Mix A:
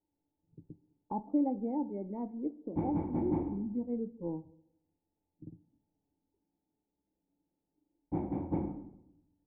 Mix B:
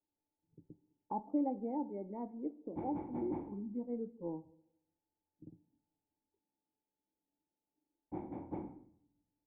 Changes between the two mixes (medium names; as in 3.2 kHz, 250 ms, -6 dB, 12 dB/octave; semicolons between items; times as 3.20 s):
background: send off; master: add bass shelf 260 Hz -10 dB